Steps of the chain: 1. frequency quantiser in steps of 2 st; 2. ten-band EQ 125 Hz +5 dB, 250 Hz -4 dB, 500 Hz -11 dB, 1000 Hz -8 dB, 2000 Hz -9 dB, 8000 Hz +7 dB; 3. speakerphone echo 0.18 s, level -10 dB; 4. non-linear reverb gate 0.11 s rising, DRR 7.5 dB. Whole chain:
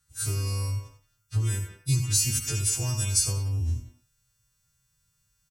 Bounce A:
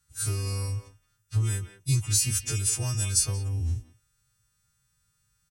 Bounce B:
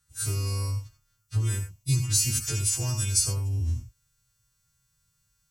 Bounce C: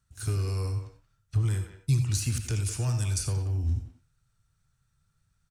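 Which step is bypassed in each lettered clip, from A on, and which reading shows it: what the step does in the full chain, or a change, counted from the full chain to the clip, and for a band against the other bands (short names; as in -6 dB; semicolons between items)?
4, echo-to-direct -5.5 dB to -10.5 dB; 3, echo-to-direct -5.5 dB to -7.5 dB; 1, 8 kHz band -9.5 dB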